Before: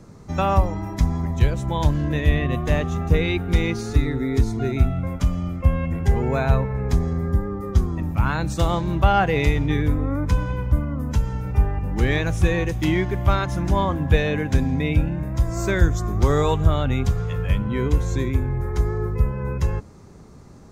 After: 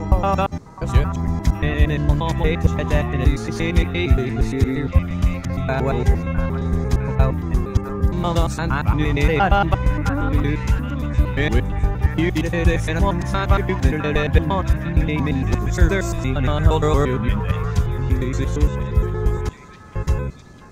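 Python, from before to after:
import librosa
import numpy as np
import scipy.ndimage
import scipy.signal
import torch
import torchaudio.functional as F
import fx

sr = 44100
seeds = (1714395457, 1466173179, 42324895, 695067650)

y = fx.block_reorder(x, sr, ms=116.0, group=7)
y = fx.echo_stepped(y, sr, ms=658, hz=1300.0, octaves=0.7, feedback_pct=70, wet_db=-7.5)
y = F.gain(torch.from_numpy(y), 2.0).numpy()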